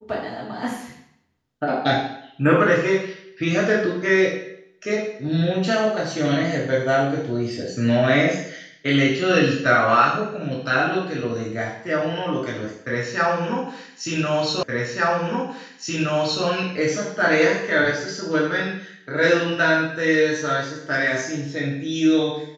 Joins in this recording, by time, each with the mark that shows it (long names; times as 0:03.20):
0:14.63: the same again, the last 1.82 s